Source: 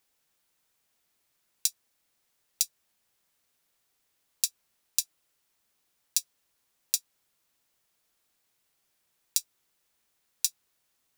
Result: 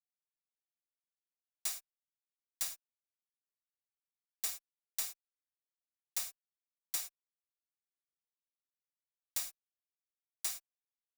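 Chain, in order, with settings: Schmitt trigger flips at -25 dBFS; pre-emphasis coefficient 0.97; non-linear reverb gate 0.14 s falling, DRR -2 dB; gain +9.5 dB

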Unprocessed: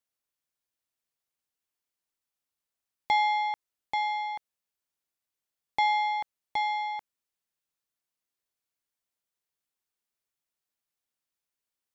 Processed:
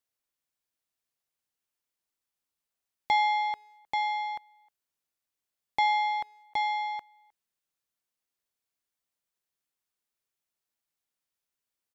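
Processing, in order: speakerphone echo 0.31 s, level -28 dB

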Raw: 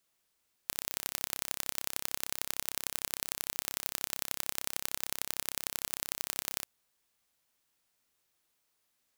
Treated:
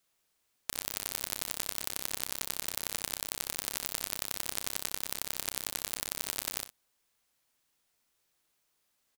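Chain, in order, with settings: early reflections 41 ms -17.5 dB, 60 ms -12.5 dB; harmoniser -12 st -9 dB, -3 st -17 dB

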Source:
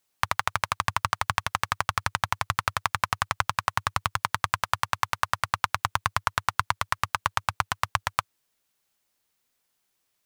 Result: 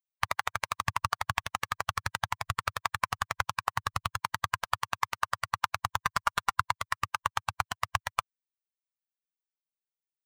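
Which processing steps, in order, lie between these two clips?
per-bin expansion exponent 2; 6.01–6.54 comb 5 ms, depth 79%

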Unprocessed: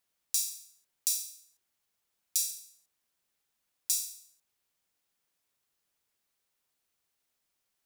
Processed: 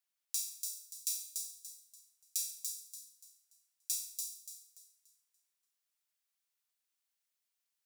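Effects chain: HPF 1400 Hz 6 dB/oct; on a send: thin delay 0.289 s, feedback 33%, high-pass 3700 Hz, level -4 dB; on the sum: gain -6.5 dB

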